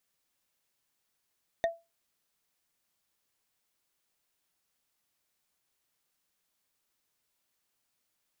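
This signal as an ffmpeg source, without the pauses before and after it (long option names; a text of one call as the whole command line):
ffmpeg -f lavfi -i "aevalsrc='0.0891*pow(10,-3*t/0.24)*sin(2*PI*670*t)+0.0398*pow(10,-3*t/0.071)*sin(2*PI*1847.2*t)+0.0178*pow(10,-3*t/0.032)*sin(2*PI*3620.7*t)+0.00794*pow(10,-3*t/0.017)*sin(2*PI*5985.1*t)+0.00355*pow(10,-3*t/0.011)*sin(2*PI*8937.8*t)':duration=0.45:sample_rate=44100" out.wav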